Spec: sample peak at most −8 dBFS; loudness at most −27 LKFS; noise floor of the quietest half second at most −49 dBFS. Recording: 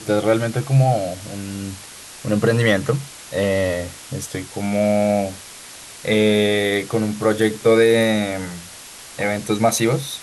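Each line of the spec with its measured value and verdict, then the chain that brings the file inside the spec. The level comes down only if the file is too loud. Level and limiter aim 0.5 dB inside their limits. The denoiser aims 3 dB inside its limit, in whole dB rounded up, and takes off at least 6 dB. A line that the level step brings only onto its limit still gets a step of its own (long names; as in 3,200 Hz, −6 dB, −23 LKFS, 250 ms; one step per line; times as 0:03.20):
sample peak −5.0 dBFS: out of spec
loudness −19.5 LKFS: out of spec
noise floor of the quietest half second −39 dBFS: out of spec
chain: broadband denoise 6 dB, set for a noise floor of −39 dBFS
level −8 dB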